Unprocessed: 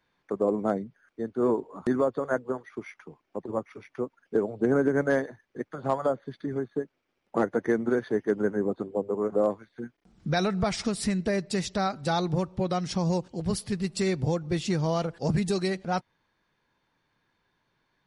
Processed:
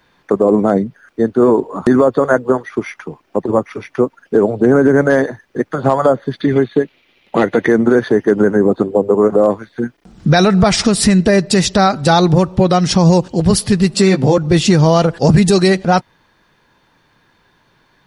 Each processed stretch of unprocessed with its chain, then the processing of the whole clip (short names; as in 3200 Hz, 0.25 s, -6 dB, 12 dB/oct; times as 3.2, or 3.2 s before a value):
6.41–7.68 band shelf 2900 Hz +11.5 dB 1.3 oct + notch 8000 Hz, Q 7.3
13.94–14.38 HPF 160 Hz 24 dB/oct + high shelf 4900 Hz -5.5 dB + doubler 15 ms -4.5 dB
whole clip: notch 2200 Hz, Q 20; maximiser +19 dB; gain -1 dB